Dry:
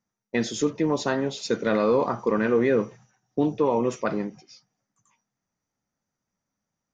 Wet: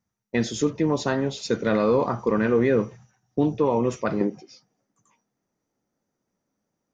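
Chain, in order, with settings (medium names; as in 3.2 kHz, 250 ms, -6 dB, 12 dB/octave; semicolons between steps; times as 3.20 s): peaking EQ 68 Hz +11.5 dB 1.7 oct, from 4.21 s 380 Hz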